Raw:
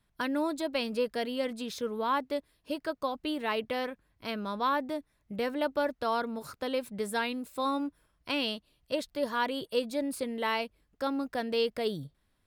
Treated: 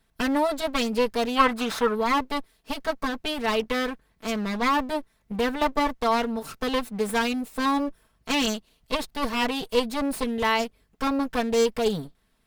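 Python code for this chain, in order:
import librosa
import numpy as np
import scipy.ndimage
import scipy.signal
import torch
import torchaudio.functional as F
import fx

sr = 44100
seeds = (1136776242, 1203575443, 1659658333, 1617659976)

y = fx.lower_of_two(x, sr, delay_ms=4.5)
y = fx.peak_eq(y, sr, hz=1300.0, db=14.5, octaves=1.5, at=(1.35, 1.94), fade=0.02)
y = y * 10.0 ** (7.5 / 20.0)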